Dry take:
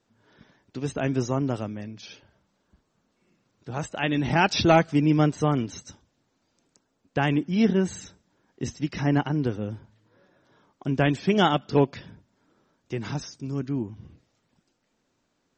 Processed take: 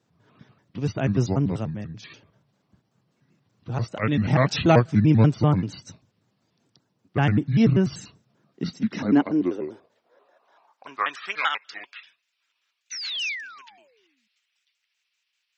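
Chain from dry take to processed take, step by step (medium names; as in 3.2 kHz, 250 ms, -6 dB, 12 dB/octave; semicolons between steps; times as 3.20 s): pitch shift switched off and on -5.5 st, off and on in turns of 97 ms; painted sound fall, 12.91–14.28 s, 200–6200 Hz -35 dBFS; high-pass sweep 120 Hz -> 2.5 kHz, 8.12–12.09 s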